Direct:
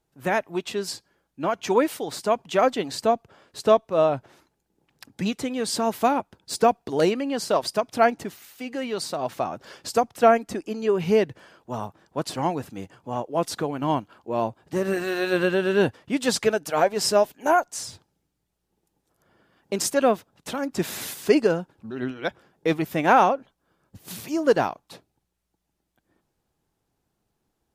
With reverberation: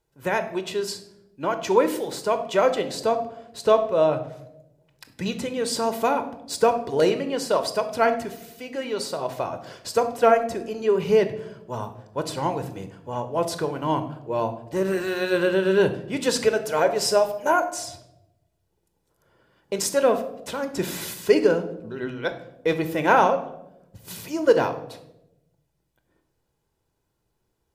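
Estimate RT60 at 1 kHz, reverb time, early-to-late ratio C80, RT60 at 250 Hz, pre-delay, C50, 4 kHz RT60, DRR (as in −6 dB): 0.70 s, 0.90 s, 15.0 dB, 1.2 s, 22 ms, 12.0 dB, 0.55 s, 8.5 dB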